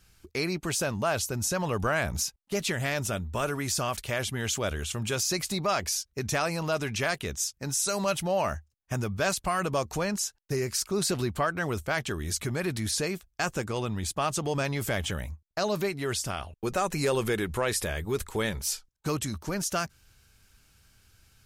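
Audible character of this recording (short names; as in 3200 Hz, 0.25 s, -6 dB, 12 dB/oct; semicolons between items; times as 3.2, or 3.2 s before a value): noise floor -71 dBFS; spectral tilt -3.5 dB/oct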